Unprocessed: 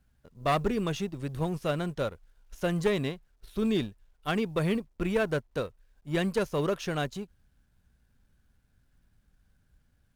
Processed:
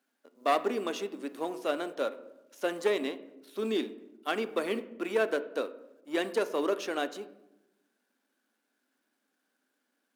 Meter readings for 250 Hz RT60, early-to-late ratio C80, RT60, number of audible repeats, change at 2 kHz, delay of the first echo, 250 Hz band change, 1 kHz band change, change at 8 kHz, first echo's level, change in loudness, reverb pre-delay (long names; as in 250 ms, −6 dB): 1.2 s, 17.0 dB, 0.90 s, no echo audible, −0.5 dB, no echo audible, −5.0 dB, +0.5 dB, −1.0 dB, no echo audible, −1.5 dB, 3 ms